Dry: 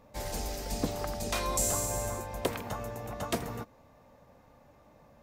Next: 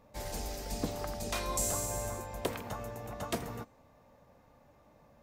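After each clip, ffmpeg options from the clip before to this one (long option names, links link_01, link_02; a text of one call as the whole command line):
ffmpeg -i in.wav -af "bandreject=frequency=259.6:width_type=h:width=4,bandreject=frequency=519.2:width_type=h:width=4,bandreject=frequency=778.8:width_type=h:width=4,bandreject=frequency=1038.4:width_type=h:width=4,bandreject=frequency=1298:width_type=h:width=4,bandreject=frequency=1557.6:width_type=h:width=4,bandreject=frequency=1817.2:width_type=h:width=4,bandreject=frequency=2076.8:width_type=h:width=4,bandreject=frequency=2336.4:width_type=h:width=4,bandreject=frequency=2596:width_type=h:width=4,bandreject=frequency=2855.6:width_type=h:width=4,bandreject=frequency=3115.2:width_type=h:width=4,bandreject=frequency=3374.8:width_type=h:width=4,bandreject=frequency=3634.4:width_type=h:width=4,bandreject=frequency=3894:width_type=h:width=4,bandreject=frequency=4153.6:width_type=h:width=4,bandreject=frequency=4413.2:width_type=h:width=4,bandreject=frequency=4672.8:width_type=h:width=4,bandreject=frequency=4932.4:width_type=h:width=4,bandreject=frequency=5192:width_type=h:width=4,bandreject=frequency=5451.6:width_type=h:width=4,bandreject=frequency=5711.2:width_type=h:width=4,bandreject=frequency=5970.8:width_type=h:width=4,bandreject=frequency=6230.4:width_type=h:width=4,bandreject=frequency=6490:width_type=h:width=4,bandreject=frequency=6749.6:width_type=h:width=4,bandreject=frequency=7009.2:width_type=h:width=4,bandreject=frequency=7268.8:width_type=h:width=4,bandreject=frequency=7528.4:width_type=h:width=4,bandreject=frequency=7788:width_type=h:width=4,bandreject=frequency=8047.6:width_type=h:width=4,bandreject=frequency=8307.2:width_type=h:width=4,bandreject=frequency=8566.8:width_type=h:width=4,bandreject=frequency=8826.4:width_type=h:width=4,volume=-3dB" out.wav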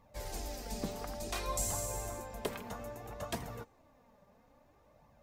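ffmpeg -i in.wav -af "flanger=delay=0.9:depth=4.3:regen=37:speed=0.59:shape=triangular,volume=1dB" out.wav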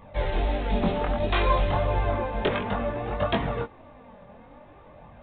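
ffmpeg -i in.wav -af "aeval=exprs='0.112*sin(PI/2*2.51*val(0)/0.112)':channel_layout=same,flanger=delay=19.5:depth=4.2:speed=1.5,aresample=8000,aresample=44100,volume=7dB" out.wav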